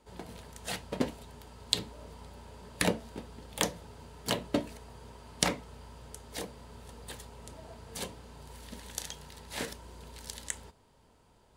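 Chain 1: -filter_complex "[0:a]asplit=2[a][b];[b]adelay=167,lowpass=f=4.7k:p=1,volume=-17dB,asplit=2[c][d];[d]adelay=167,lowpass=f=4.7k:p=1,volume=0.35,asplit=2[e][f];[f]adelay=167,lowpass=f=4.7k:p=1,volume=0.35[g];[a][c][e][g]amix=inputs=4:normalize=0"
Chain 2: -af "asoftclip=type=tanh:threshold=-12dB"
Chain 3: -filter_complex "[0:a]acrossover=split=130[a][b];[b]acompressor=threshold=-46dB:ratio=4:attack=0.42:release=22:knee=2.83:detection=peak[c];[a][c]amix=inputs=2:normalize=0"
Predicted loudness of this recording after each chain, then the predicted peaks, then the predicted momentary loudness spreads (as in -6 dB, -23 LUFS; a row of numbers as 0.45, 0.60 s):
-36.5, -38.0, -48.5 LUFS; -3.0, -12.0, -28.5 dBFS; 19, 18, 6 LU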